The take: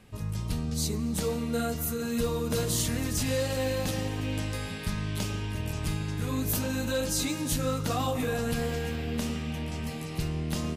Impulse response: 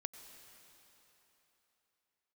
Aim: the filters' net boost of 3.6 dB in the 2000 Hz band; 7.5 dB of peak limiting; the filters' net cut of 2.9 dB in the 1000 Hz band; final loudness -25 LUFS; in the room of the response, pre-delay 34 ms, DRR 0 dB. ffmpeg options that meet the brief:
-filter_complex "[0:a]equalizer=f=1k:t=o:g=-6,equalizer=f=2k:t=o:g=6.5,alimiter=limit=-24dB:level=0:latency=1,asplit=2[a][b];[1:a]atrim=start_sample=2205,adelay=34[c];[b][c]afir=irnorm=-1:irlink=0,volume=2.5dB[d];[a][d]amix=inputs=2:normalize=0,volume=5.5dB"

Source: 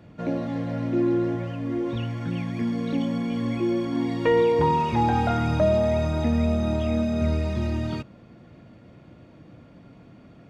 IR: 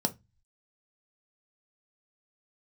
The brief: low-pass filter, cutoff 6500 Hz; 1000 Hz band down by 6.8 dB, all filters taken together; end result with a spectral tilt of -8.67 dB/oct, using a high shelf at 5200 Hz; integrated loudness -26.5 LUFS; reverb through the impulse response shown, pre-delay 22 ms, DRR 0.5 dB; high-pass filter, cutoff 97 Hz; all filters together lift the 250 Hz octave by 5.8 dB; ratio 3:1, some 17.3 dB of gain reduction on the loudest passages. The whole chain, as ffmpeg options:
-filter_complex "[0:a]highpass=97,lowpass=6.5k,equalizer=f=250:t=o:g=7.5,equalizer=f=1k:t=o:g=-8.5,highshelf=f=5.2k:g=-8,acompressor=threshold=-40dB:ratio=3,asplit=2[a][b];[1:a]atrim=start_sample=2205,adelay=22[c];[b][c]afir=irnorm=-1:irlink=0,volume=-6.5dB[d];[a][d]amix=inputs=2:normalize=0,volume=2dB"

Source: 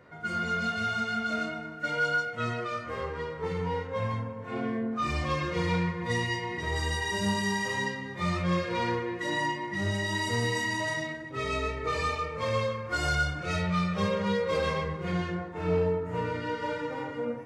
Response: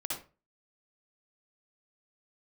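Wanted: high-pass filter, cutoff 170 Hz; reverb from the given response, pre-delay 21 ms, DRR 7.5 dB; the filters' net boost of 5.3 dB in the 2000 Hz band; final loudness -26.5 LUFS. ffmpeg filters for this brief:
-filter_complex "[0:a]highpass=170,equalizer=f=2k:t=o:g=6.5,asplit=2[a][b];[1:a]atrim=start_sample=2205,adelay=21[c];[b][c]afir=irnorm=-1:irlink=0,volume=-10dB[d];[a][d]amix=inputs=2:normalize=0,volume=1dB"

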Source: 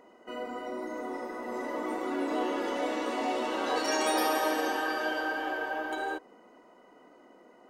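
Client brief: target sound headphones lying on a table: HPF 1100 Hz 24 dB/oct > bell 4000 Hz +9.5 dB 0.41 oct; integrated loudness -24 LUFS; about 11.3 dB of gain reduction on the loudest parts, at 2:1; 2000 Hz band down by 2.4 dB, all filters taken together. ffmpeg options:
-af "equalizer=f=2k:t=o:g=-3.5,acompressor=threshold=-46dB:ratio=2,highpass=f=1.1k:w=0.5412,highpass=f=1.1k:w=1.3066,equalizer=f=4k:t=o:w=0.41:g=9.5,volume=22dB"

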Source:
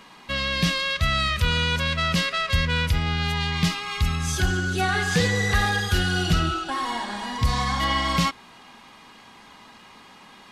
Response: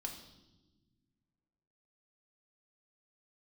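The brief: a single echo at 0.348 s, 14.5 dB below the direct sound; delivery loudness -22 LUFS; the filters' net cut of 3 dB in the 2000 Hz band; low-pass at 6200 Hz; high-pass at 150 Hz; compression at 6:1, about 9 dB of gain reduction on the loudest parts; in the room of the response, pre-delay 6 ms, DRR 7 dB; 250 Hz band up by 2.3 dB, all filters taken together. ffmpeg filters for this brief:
-filter_complex "[0:a]highpass=150,lowpass=6.2k,equalizer=f=250:t=o:g=6,equalizer=f=2k:t=o:g=-4,acompressor=threshold=-27dB:ratio=6,aecho=1:1:348:0.188,asplit=2[a][b];[1:a]atrim=start_sample=2205,adelay=6[c];[b][c]afir=irnorm=-1:irlink=0,volume=-5dB[d];[a][d]amix=inputs=2:normalize=0,volume=7.5dB"

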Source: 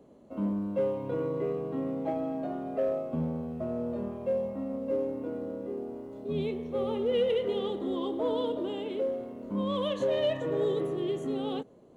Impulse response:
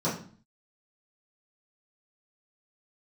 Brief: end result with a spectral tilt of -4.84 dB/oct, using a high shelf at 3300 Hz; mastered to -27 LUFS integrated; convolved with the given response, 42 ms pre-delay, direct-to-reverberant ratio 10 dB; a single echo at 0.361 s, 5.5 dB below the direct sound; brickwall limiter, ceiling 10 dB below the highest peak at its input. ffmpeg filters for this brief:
-filter_complex "[0:a]highshelf=f=3.3k:g=-9,alimiter=level_in=5.5dB:limit=-24dB:level=0:latency=1,volume=-5.5dB,aecho=1:1:361:0.531,asplit=2[a][b];[1:a]atrim=start_sample=2205,adelay=42[c];[b][c]afir=irnorm=-1:irlink=0,volume=-20dB[d];[a][d]amix=inputs=2:normalize=0,volume=6.5dB"

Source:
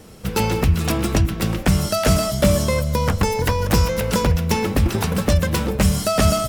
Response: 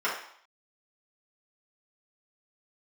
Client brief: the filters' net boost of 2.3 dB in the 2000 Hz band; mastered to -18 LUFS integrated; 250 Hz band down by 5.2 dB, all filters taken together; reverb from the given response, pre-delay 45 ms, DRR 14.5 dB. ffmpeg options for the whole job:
-filter_complex "[0:a]equalizer=f=250:t=o:g=-8,equalizer=f=2k:t=o:g=3,asplit=2[a][b];[1:a]atrim=start_sample=2205,adelay=45[c];[b][c]afir=irnorm=-1:irlink=0,volume=-26.5dB[d];[a][d]amix=inputs=2:normalize=0,volume=2.5dB"

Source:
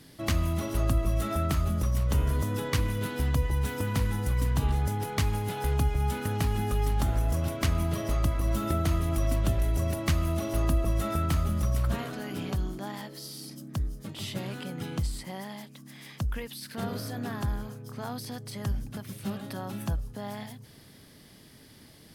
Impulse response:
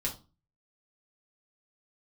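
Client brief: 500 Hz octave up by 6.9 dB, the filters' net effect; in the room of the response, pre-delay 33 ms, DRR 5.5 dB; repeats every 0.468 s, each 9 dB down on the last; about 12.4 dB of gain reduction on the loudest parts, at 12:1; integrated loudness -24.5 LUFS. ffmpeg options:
-filter_complex "[0:a]equalizer=f=500:t=o:g=9,acompressor=threshold=-33dB:ratio=12,aecho=1:1:468|936|1404|1872:0.355|0.124|0.0435|0.0152,asplit=2[a][b];[1:a]atrim=start_sample=2205,adelay=33[c];[b][c]afir=irnorm=-1:irlink=0,volume=-9dB[d];[a][d]amix=inputs=2:normalize=0,volume=12dB"

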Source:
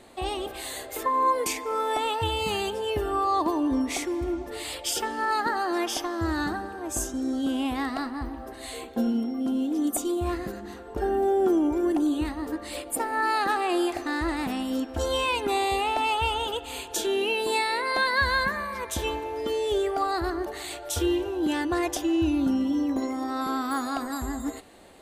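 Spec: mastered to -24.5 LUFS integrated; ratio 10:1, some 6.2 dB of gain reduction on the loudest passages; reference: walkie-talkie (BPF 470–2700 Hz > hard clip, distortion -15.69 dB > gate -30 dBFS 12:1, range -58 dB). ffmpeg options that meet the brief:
-af "acompressor=threshold=-25dB:ratio=10,highpass=470,lowpass=2.7k,asoftclip=type=hard:threshold=-27.5dB,agate=range=-58dB:threshold=-30dB:ratio=12,volume=11.5dB"

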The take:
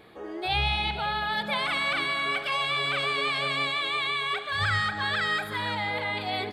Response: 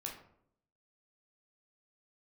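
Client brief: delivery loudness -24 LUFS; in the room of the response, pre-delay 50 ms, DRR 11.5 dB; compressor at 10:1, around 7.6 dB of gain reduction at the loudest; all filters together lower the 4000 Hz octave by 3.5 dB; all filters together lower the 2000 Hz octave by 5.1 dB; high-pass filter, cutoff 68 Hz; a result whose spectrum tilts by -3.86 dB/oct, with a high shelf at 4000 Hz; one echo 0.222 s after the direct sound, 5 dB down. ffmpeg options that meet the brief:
-filter_complex "[0:a]highpass=68,equalizer=f=2k:t=o:g=-6,highshelf=f=4k:g=4.5,equalizer=f=4k:t=o:g=-4.5,acompressor=threshold=-32dB:ratio=10,aecho=1:1:222:0.562,asplit=2[a][b];[1:a]atrim=start_sample=2205,adelay=50[c];[b][c]afir=irnorm=-1:irlink=0,volume=-10dB[d];[a][d]amix=inputs=2:normalize=0,volume=9.5dB"

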